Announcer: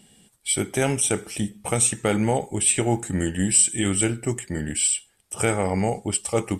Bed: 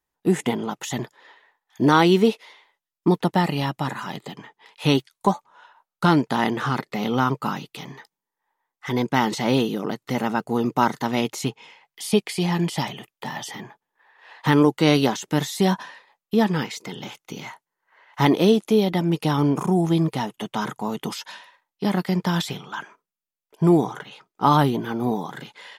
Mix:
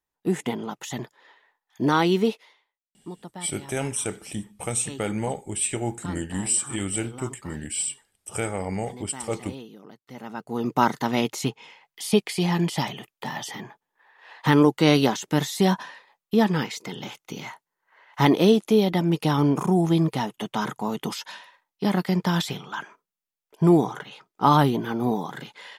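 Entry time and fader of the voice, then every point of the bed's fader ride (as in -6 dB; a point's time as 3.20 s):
2.95 s, -6.0 dB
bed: 2.37 s -4.5 dB
2.75 s -19.5 dB
10.03 s -19.5 dB
10.77 s -0.5 dB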